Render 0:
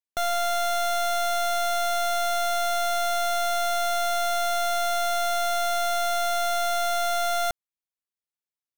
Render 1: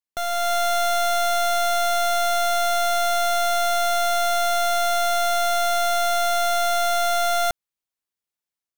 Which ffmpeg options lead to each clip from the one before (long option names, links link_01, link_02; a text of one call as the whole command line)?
ffmpeg -i in.wav -af "dynaudnorm=framelen=260:gausssize=3:maxgain=5dB,volume=-1dB" out.wav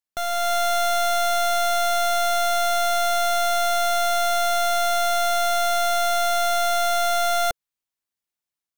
ffmpeg -i in.wav -af "equalizer=frequency=480:width=5.2:gain=-4.5" out.wav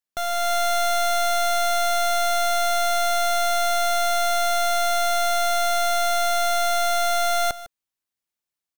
ffmpeg -i in.wav -af "aecho=1:1:153:0.158" out.wav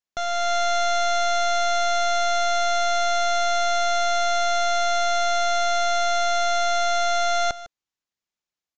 ffmpeg -i in.wav -af "aresample=16000,aresample=44100" out.wav